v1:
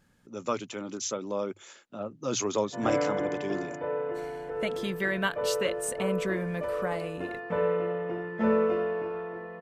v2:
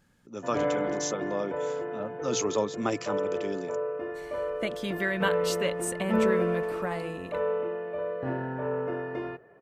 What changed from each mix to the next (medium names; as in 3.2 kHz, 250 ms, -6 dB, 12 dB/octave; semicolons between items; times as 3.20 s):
background: entry -2.30 s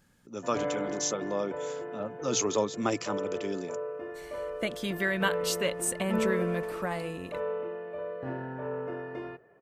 background -4.5 dB; master: add treble shelf 6.1 kHz +5.5 dB